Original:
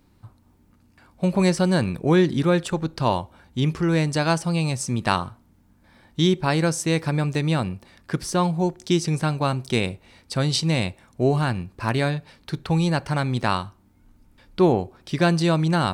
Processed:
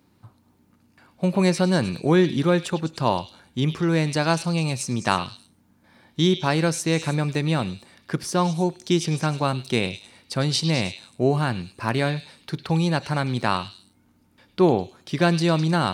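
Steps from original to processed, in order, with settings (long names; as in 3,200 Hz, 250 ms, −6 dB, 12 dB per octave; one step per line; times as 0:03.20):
high-pass filter 110 Hz
notch filter 7,900 Hz, Q 25
echo through a band-pass that steps 103 ms, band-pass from 3,300 Hz, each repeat 0.7 octaves, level −7 dB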